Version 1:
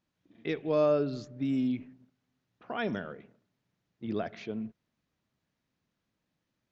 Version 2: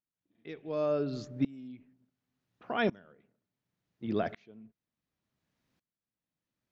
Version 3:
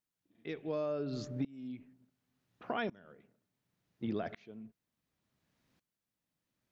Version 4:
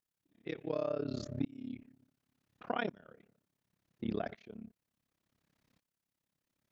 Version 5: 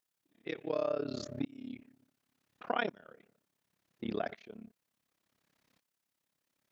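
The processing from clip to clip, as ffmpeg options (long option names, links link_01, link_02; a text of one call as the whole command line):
ffmpeg -i in.wav -af "aeval=exprs='val(0)*pow(10,-25*if(lt(mod(-0.69*n/s,1),2*abs(-0.69)/1000),1-mod(-0.69*n/s,1)/(2*abs(-0.69)/1000),(mod(-0.69*n/s,1)-2*abs(-0.69)/1000)/(1-2*abs(-0.69)/1000))/20)':channel_layout=same,volume=5dB" out.wav
ffmpeg -i in.wav -af "acompressor=threshold=-36dB:ratio=6,volume=3dB" out.wav
ffmpeg -i in.wav -af "tremolo=f=34:d=0.974,volume=4dB" out.wav
ffmpeg -i in.wav -af "lowshelf=frequency=220:gain=-11.5,volume=4dB" out.wav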